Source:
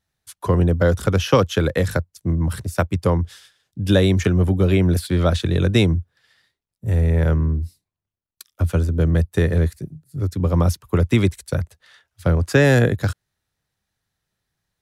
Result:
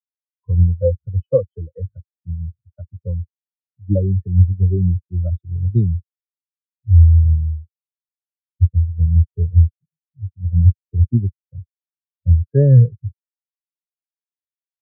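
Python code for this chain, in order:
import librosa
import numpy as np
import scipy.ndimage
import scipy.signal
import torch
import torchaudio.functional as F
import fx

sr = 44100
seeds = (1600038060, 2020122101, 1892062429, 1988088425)

y = fx.spectral_expand(x, sr, expansion=4.0)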